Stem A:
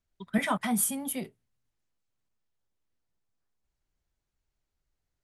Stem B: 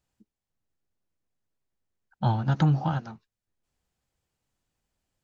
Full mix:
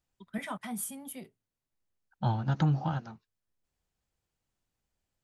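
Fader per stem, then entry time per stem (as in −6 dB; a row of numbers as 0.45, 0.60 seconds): −9.5, −4.5 decibels; 0.00, 0.00 seconds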